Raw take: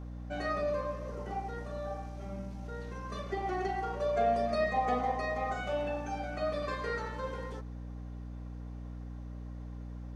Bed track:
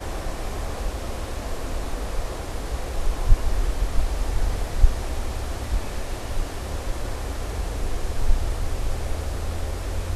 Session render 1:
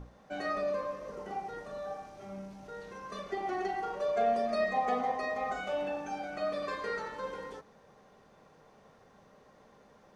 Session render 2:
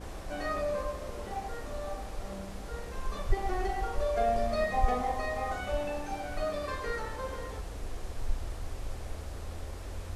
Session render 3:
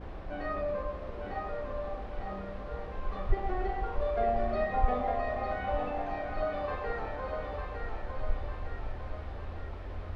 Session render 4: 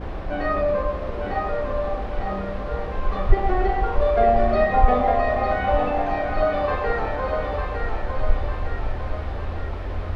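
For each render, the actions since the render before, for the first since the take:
notches 60/120/180/240/300 Hz
add bed track -12 dB
air absorption 350 m; thinning echo 0.903 s, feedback 58%, high-pass 420 Hz, level -4.5 dB
gain +11.5 dB; limiter -2 dBFS, peak gain reduction 1 dB

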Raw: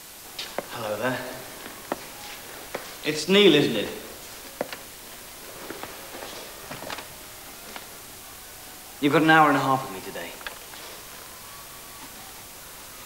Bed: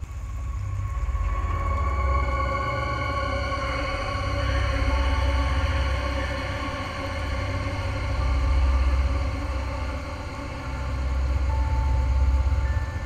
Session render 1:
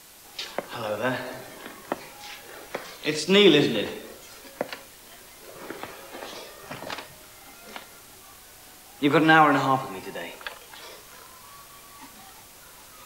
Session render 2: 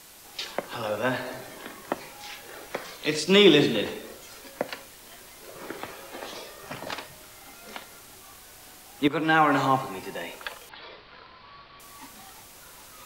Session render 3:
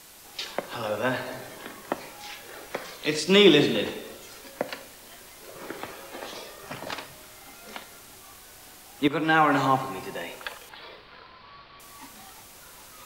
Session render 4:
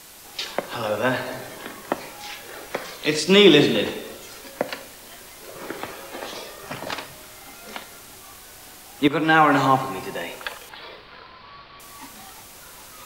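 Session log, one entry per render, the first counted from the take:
noise print and reduce 6 dB
9.08–9.65 fade in linear, from -12 dB; 10.69–11.8 elliptic low-pass 4500 Hz
Schroeder reverb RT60 1.5 s, combs from 29 ms, DRR 16 dB
gain +4.5 dB; limiter -3 dBFS, peak gain reduction 2 dB

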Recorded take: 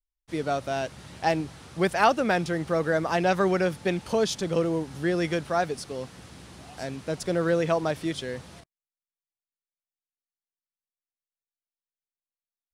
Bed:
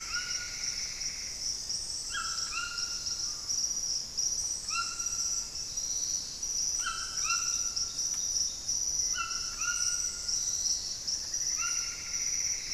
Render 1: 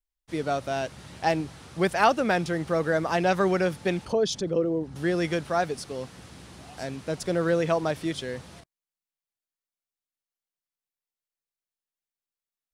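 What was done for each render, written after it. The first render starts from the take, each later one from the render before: 4.05–4.96 formant sharpening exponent 1.5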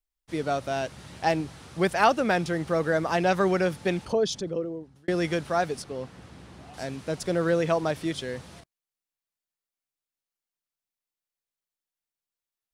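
4.19–5.08 fade out; 5.82–6.74 high shelf 3500 Hz -10 dB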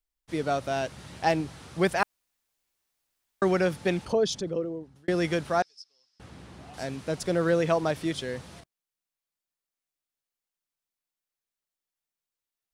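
2.03–3.42 room tone; 5.62–6.2 band-pass 5200 Hz, Q 14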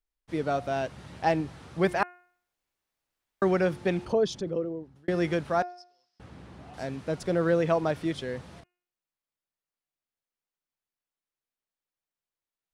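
high shelf 3600 Hz -9.5 dB; de-hum 356.3 Hz, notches 8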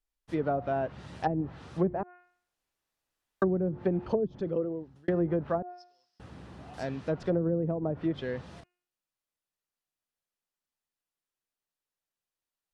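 notch 2200 Hz, Q 19; treble ducked by the level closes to 340 Hz, closed at -21 dBFS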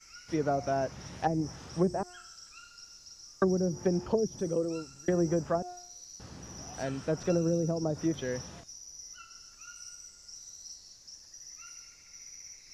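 add bed -16.5 dB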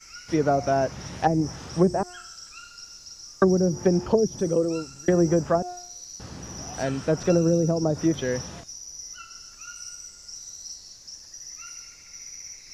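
gain +7.5 dB

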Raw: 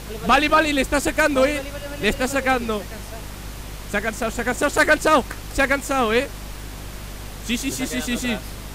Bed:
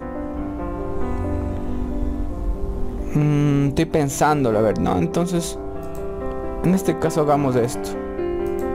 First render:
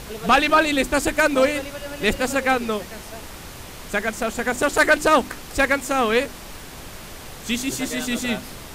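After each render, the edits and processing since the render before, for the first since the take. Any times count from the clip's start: de-hum 50 Hz, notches 7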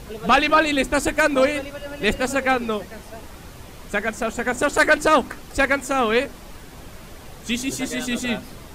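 denoiser 7 dB, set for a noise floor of -38 dBFS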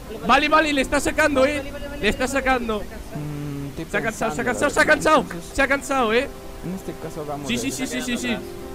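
add bed -12.5 dB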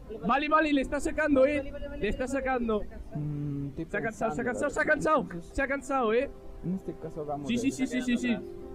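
limiter -13.5 dBFS, peak gain reduction 8.5 dB; spectral expander 1.5:1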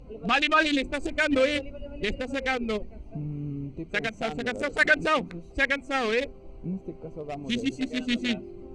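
Wiener smoothing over 25 samples; band shelf 4000 Hz +14 dB 2.7 oct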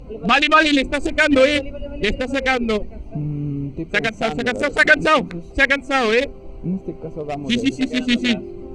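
gain +9 dB; limiter -2 dBFS, peak gain reduction 3 dB

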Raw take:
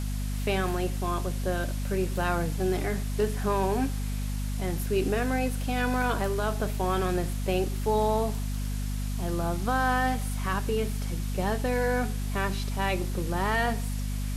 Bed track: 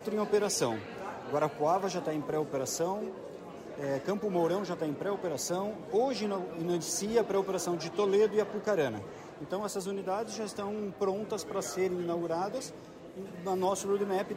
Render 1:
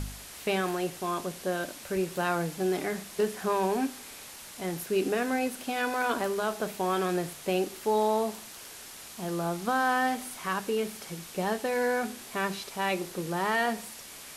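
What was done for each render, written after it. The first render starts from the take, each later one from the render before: de-hum 50 Hz, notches 5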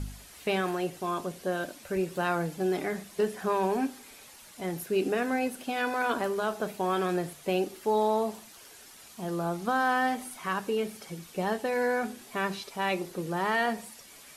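denoiser 8 dB, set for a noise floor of -46 dBFS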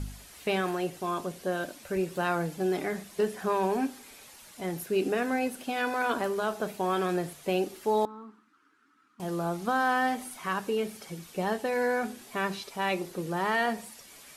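8.05–9.2 double band-pass 610 Hz, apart 2.2 oct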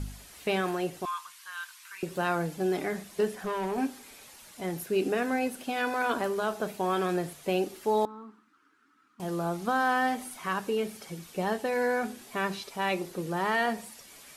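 1.05–2.03 elliptic high-pass 1000 Hz; 3.35–3.78 tube stage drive 26 dB, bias 0.4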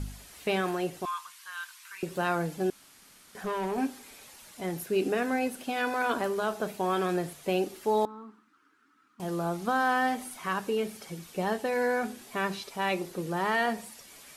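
2.7–3.35 room tone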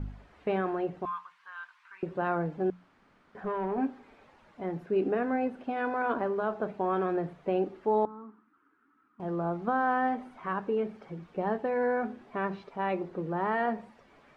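LPF 1400 Hz 12 dB/oct; notches 60/120/180 Hz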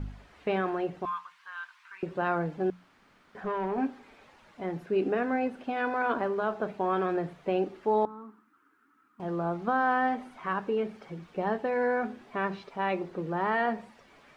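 high shelf 2100 Hz +8.5 dB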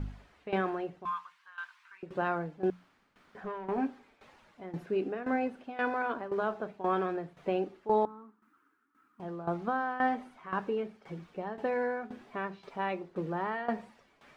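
tremolo saw down 1.9 Hz, depth 80%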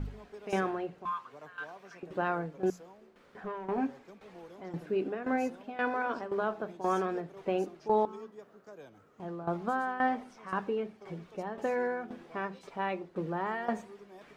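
add bed track -21 dB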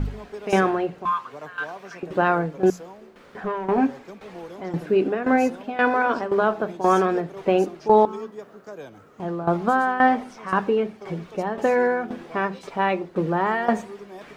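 gain +11.5 dB

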